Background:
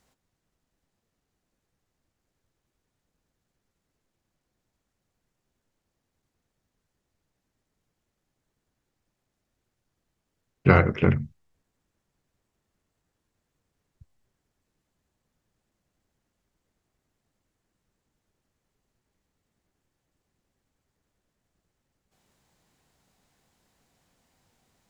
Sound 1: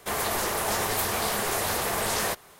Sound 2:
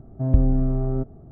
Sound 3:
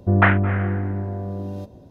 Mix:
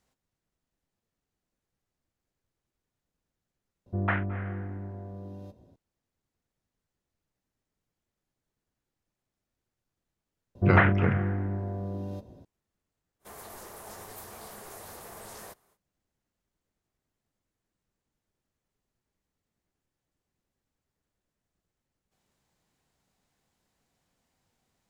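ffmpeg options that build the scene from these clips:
-filter_complex "[3:a]asplit=2[s0][s1];[0:a]volume=0.447[s2];[1:a]equalizer=f=2900:t=o:w=1.9:g=-6.5[s3];[s0]atrim=end=1.9,asetpts=PTS-STARTPTS,volume=0.237,afade=t=in:d=0.004:c=hsin,afade=t=out:st=1.896:d=0.004:c=hsin,adelay=3860[s4];[s1]atrim=end=1.9,asetpts=PTS-STARTPTS,volume=0.531,afade=t=in:d=0.004:c=hsin,afade=t=out:st=1.896:d=0.004:c=hsin,adelay=10550[s5];[s3]atrim=end=2.59,asetpts=PTS-STARTPTS,volume=0.15,afade=t=in:d=0.05,afade=t=out:st=2.54:d=0.05,adelay=13190[s6];[s2][s4][s5][s6]amix=inputs=4:normalize=0"

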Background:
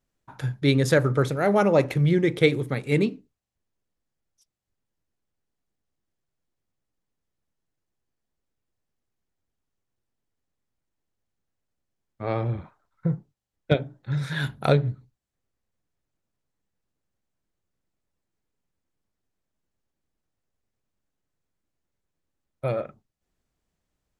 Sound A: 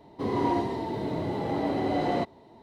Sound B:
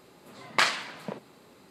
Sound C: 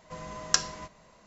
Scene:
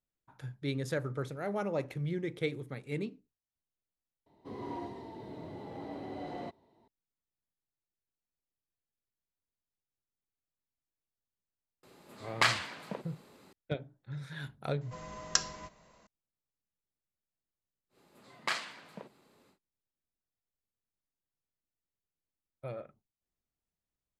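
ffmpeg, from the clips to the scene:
-filter_complex "[2:a]asplit=2[s0][s1];[0:a]volume=0.188,asplit=2[s2][s3];[s2]atrim=end=4.264[s4];[1:a]atrim=end=2.62,asetpts=PTS-STARTPTS,volume=0.188[s5];[s3]atrim=start=6.876[s6];[s0]atrim=end=1.7,asetpts=PTS-STARTPTS,volume=0.668,afade=t=in:d=0.004:c=hsin,afade=t=out:st=1.696:d=0.004:c=hsin,adelay=11830[s7];[3:a]atrim=end=1.26,asetpts=PTS-STARTPTS,volume=0.596,afade=t=in:d=0.004:c=hsin,afade=t=out:st=1.256:d=0.004:c=hsin,adelay=14810[s8];[s1]atrim=end=1.7,asetpts=PTS-STARTPTS,volume=0.299,afade=t=in:d=0.1,afade=t=out:st=1.6:d=0.1,adelay=17890[s9];[s4][s5]acrossfade=d=0.004:c1=hsin:c2=hsin[s10];[s10][s6]acrossfade=d=0.004:c1=hsin:c2=hsin[s11];[s11][s7][s8][s9]amix=inputs=4:normalize=0"

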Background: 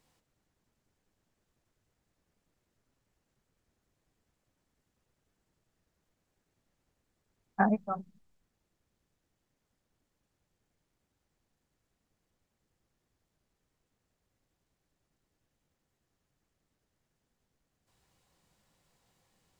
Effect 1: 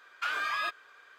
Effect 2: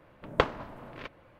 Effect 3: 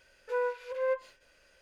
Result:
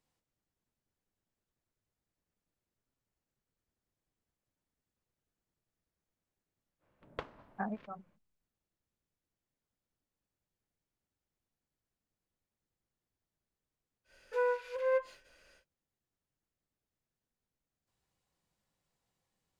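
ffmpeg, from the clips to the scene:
-filter_complex "[0:a]volume=0.266[s0];[2:a]atrim=end=1.39,asetpts=PTS-STARTPTS,volume=0.133,afade=t=in:d=0.05,afade=t=out:st=1.34:d=0.05,adelay=6790[s1];[3:a]atrim=end=1.61,asetpts=PTS-STARTPTS,volume=0.944,afade=t=in:d=0.1,afade=t=out:st=1.51:d=0.1,adelay=14040[s2];[s0][s1][s2]amix=inputs=3:normalize=0"

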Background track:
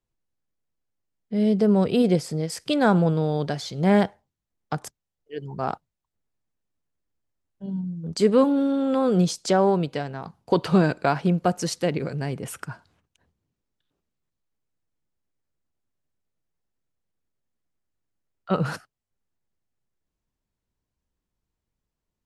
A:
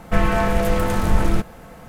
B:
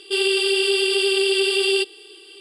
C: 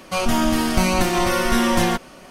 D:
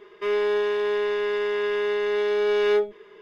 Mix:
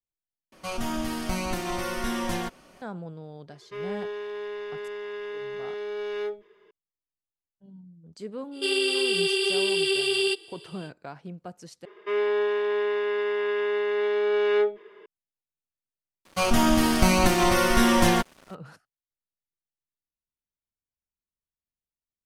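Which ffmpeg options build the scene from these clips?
-filter_complex "[3:a]asplit=2[s0][s1];[4:a]asplit=2[s2][s3];[0:a]volume=0.119[s4];[2:a]highpass=94[s5];[s3]acrossover=split=210 3700:gain=0.2 1 0.251[s6][s7][s8];[s6][s7][s8]amix=inputs=3:normalize=0[s9];[s1]aeval=exprs='sgn(val(0))*max(abs(val(0))-0.00891,0)':c=same[s10];[s4]asplit=3[s11][s12][s13];[s11]atrim=end=0.524[s14];[s0]atrim=end=2.3,asetpts=PTS-STARTPTS,volume=0.282[s15];[s12]atrim=start=2.816:end=11.854[s16];[s9]atrim=end=3.21,asetpts=PTS-STARTPTS,volume=0.891[s17];[s13]atrim=start=15.056[s18];[s2]atrim=end=3.21,asetpts=PTS-STARTPTS,volume=0.299,afade=t=in:d=0.004:c=hsin,afade=t=out:st=3.206:d=0.004:c=hsin,adelay=3500[s19];[s5]atrim=end=2.4,asetpts=PTS-STARTPTS,volume=0.562,afade=t=in:d=0.05,afade=t=out:st=2.35:d=0.05,adelay=8510[s20];[s10]atrim=end=2.3,asetpts=PTS-STARTPTS,volume=0.891,afade=t=in:d=0.004:c=hsin,afade=t=out:st=2.296:d=0.004:c=hsin,adelay=16250[s21];[s14][s15]acrossfade=d=0.004:c1=hsin:c2=hsin[s22];[s22][s16]acrossfade=d=0.004:c1=hsin:c2=hsin[s23];[s23][s17]acrossfade=d=0.004:c1=hsin:c2=hsin[s24];[s24][s18]acrossfade=d=0.004:c1=hsin:c2=hsin[s25];[s25][s19][s20][s21]amix=inputs=4:normalize=0"

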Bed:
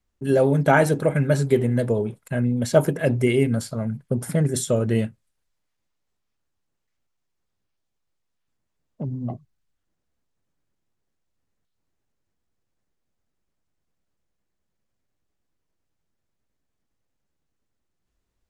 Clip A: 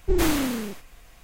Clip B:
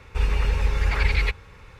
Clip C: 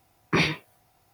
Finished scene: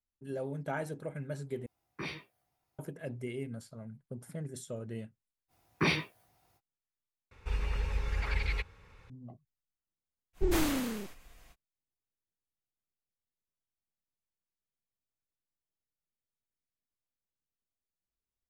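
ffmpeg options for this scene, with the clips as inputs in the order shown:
-filter_complex "[3:a]asplit=2[s0][s1];[0:a]volume=0.106[s2];[s0]asplit=2[s3][s4];[s4]adelay=15,volume=0.447[s5];[s3][s5]amix=inputs=2:normalize=0[s6];[s2]asplit=3[s7][s8][s9];[s7]atrim=end=1.664[s10];[s6]atrim=end=1.13,asetpts=PTS-STARTPTS,volume=0.126[s11];[s8]atrim=start=2.786:end=7.314[s12];[2:a]atrim=end=1.79,asetpts=PTS-STARTPTS,volume=0.282[s13];[s9]atrim=start=9.096[s14];[s1]atrim=end=1.13,asetpts=PTS-STARTPTS,volume=0.501,afade=t=in:d=0.05,afade=t=out:st=1.08:d=0.05,adelay=5480[s15];[1:a]atrim=end=1.23,asetpts=PTS-STARTPTS,volume=0.447,afade=t=in:d=0.05,afade=t=out:st=1.18:d=0.05,adelay=10330[s16];[s10][s11]acrossfade=d=0.004:c1=hsin:c2=hsin[s17];[s17][s12]acrossfade=d=0.004:c1=hsin:c2=hsin[s18];[s18][s13]acrossfade=d=0.004:c1=hsin:c2=hsin[s19];[s19][s14]acrossfade=d=0.004:c1=hsin:c2=hsin[s20];[s20][s15][s16]amix=inputs=3:normalize=0"

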